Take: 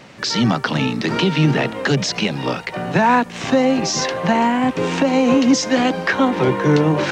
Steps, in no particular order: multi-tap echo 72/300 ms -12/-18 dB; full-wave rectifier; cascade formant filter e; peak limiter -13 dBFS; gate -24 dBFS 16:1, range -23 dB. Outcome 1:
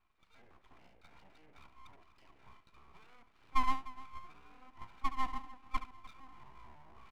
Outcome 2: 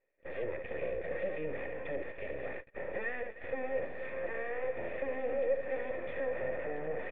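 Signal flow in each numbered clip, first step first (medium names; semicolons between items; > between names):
peak limiter > cascade formant filter > gate > multi-tap echo > full-wave rectifier; full-wave rectifier > multi-tap echo > peak limiter > gate > cascade formant filter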